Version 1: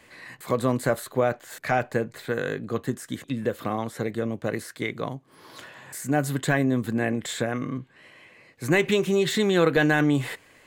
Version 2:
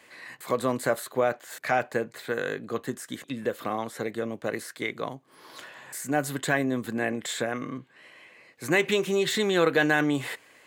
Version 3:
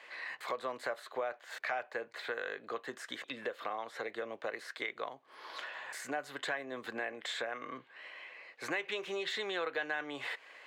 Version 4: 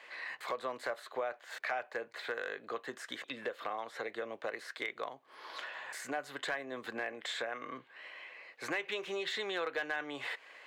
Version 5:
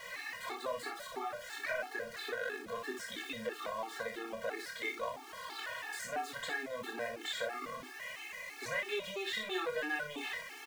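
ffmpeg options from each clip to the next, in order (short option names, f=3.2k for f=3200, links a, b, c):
-af "highpass=f=340:p=1"
-filter_complex "[0:a]acrossover=split=450 4900:gain=0.0891 1 0.112[a][b][c];[a][b][c]amix=inputs=3:normalize=0,acompressor=threshold=-40dB:ratio=3,volume=2.5dB"
-af "aeval=exprs='clip(val(0),-1,0.0398)':c=same"
-af "aeval=exprs='val(0)+0.5*0.00668*sgn(val(0))':c=same,aecho=1:1:27|59:0.562|0.447,afftfilt=real='re*gt(sin(2*PI*3*pts/sr)*(1-2*mod(floor(b*sr/1024/230),2)),0)':imag='im*gt(sin(2*PI*3*pts/sr)*(1-2*mod(floor(b*sr/1024/230),2)),0)':win_size=1024:overlap=0.75"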